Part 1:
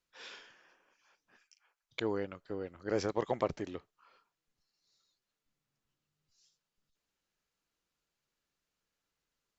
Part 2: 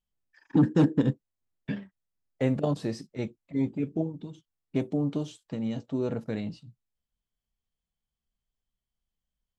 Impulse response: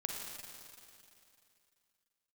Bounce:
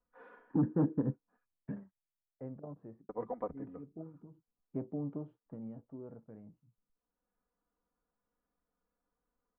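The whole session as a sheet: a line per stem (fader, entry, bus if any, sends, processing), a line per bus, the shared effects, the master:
+1.0 dB, 0.00 s, muted 0:01.46–0:03.09, no send, comb filter 4.1 ms, depth 91%; automatic ducking −10 dB, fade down 0.80 s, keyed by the second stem
0:01.90 −8.5 dB → 0:02.50 −19.5 dB → 0:03.84 −19.5 dB → 0:04.55 −10.5 dB → 0:05.40 −10.5 dB → 0:06.18 −20 dB, 0.00 s, no send, no processing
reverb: not used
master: low-pass filter 1,300 Hz 24 dB per octave

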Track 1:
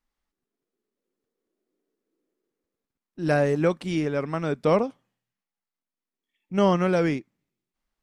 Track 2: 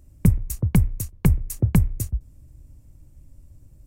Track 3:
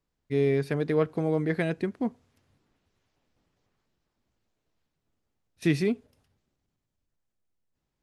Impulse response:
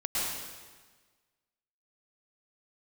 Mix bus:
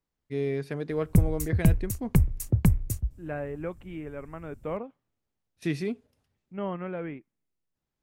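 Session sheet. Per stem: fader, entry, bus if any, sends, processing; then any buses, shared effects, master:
−12.5 dB, 0.00 s, no send, inverse Chebyshev low-pass filter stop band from 5,400 Hz, stop band 40 dB
−3.5 dB, 0.90 s, no send, no processing
−5.0 dB, 0.00 s, no send, no processing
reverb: not used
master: no processing

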